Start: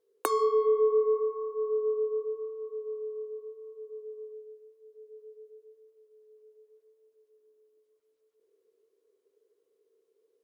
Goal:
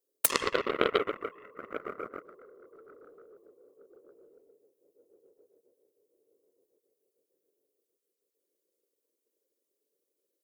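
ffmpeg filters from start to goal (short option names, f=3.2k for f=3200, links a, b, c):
-af "afftfilt=real='hypot(re,im)*cos(2*PI*random(0))':imag='hypot(re,im)*sin(2*PI*random(1))':win_size=512:overlap=0.75,aeval=exprs='0.106*(cos(1*acos(clip(val(0)/0.106,-1,1)))-cos(1*PI/2))+0.0473*(cos(3*acos(clip(val(0)/0.106,-1,1)))-cos(3*PI/2))+0.0188*(cos(5*acos(clip(val(0)/0.106,-1,1)))-cos(5*PI/2))+0.0106*(cos(7*acos(clip(val(0)/0.106,-1,1)))-cos(7*PI/2))':c=same,crystalizer=i=7:c=0,volume=7dB"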